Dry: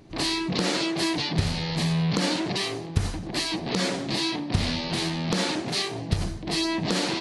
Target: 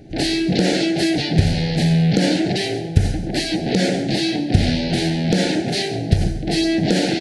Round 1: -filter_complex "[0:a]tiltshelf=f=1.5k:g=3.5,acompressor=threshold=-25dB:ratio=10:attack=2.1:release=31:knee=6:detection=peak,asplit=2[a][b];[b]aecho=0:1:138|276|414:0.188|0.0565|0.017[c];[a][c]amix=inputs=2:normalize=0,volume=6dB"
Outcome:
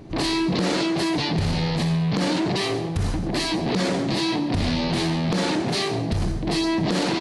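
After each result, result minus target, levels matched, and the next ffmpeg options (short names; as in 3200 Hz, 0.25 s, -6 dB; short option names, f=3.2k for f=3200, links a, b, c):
compressor: peak gain reduction +14.5 dB; 1000 Hz band +5.5 dB
-filter_complex "[0:a]tiltshelf=f=1.5k:g=3.5,asplit=2[a][b];[b]aecho=0:1:138|276|414:0.188|0.0565|0.017[c];[a][c]amix=inputs=2:normalize=0,volume=6dB"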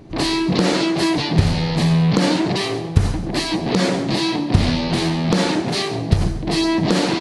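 1000 Hz band +4.5 dB
-filter_complex "[0:a]asuperstop=centerf=1100:order=8:qfactor=1.7,tiltshelf=f=1.5k:g=3.5,asplit=2[a][b];[b]aecho=0:1:138|276|414:0.188|0.0565|0.017[c];[a][c]amix=inputs=2:normalize=0,volume=6dB"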